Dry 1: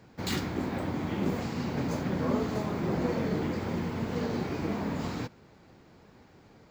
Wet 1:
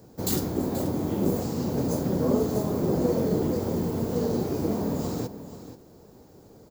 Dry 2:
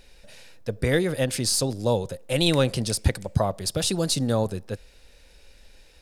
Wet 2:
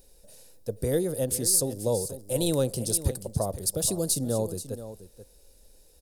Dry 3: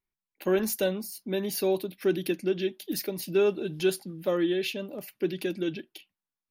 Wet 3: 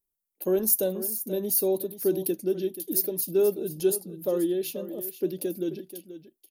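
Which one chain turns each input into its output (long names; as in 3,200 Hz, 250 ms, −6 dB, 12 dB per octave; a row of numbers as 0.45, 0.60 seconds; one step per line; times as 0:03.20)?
drawn EQ curve 230 Hz 0 dB, 470 Hz +4 dB, 2,200 Hz −14 dB, 12,000 Hz +14 dB
single-tap delay 482 ms −13 dB
loudness normalisation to −27 LKFS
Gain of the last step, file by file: +4.0, −5.5, −2.0 decibels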